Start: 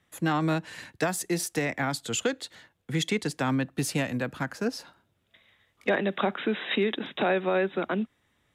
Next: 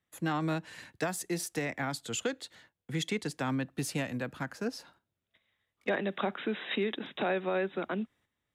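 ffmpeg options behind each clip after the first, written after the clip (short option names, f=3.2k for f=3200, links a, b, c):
-af "agate=range=-9dB:threshold=-56dB:ratio=16:detection=peak,volume=-5.5dB"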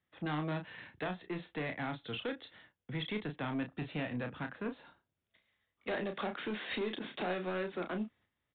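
-filter_complex "[0:a]aresample=8000,asoftclip=type=tanh:threshold=-30.5dB,aresample=44100,asplit=2[a][b];[b]adelay=33,volume=-7dB[c];[a][c]amix=inputs=2:normalize=0,volume=-1.5dB"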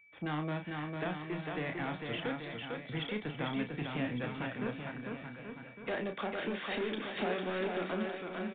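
-af "aeval=exprs='val(0)+0.00112*sin(2*PI*2300*n/s)':c=same,aecho=1:1:450|832.5|1158|1434|1669:0.631|0.398|0.251|0.158|0.1,aresample=8000,aresample=44100"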